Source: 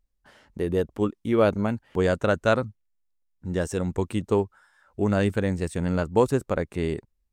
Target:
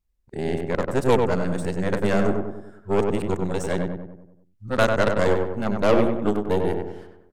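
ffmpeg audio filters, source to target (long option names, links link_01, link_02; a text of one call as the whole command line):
ffmpeg -i in.wav -filter_complex "[0:a]areverse,aeval=exprs='0.398*(cos(1*acos(clip(val(0)/0.398,-1,1)))-cos(1*PI/2))+0.0631*(cos(6*acos(clip(val(0)/0.398,-1,1)))-cos(6*PI/2))':channel_layout=same,asplit=2[link_01][link_02];[link_02]adelay=96,lowpass=frequency=1800:poles=1,volume=-3.5dB,asplit=2[link_03][link_04];[link_04]adelay=96,lowpass=frequency=1800:poles=1,volume=0.52,asplit=2[link_05][link_06];[link_06]adelay=96,lowpass=frequency=1800:poles=1,volume=0.52,asplit=2[link_07][link_08];[link_08]adelay=96,lowpass=frequency=1800:poles=1,volume=0.52,asplit=2[link_09][link_10];[link_10]adelay=96,lowpass=frequency=1800:poles=1,volume=0.52,asplit=2[link_11][link_12];[link_12]adelay=96,lowpass=frequency=1800:poles=1,volume=0.52,asplit=2[link_13][link_14];[link_14]adelay=96,lowpass=frequency=1800:poles=1,volume=0.52[link_15];[link_01][link_03][link_05][link_07][link_09][link_11][link_13][link_15]amix=inputs=8:normalize=0" out.wav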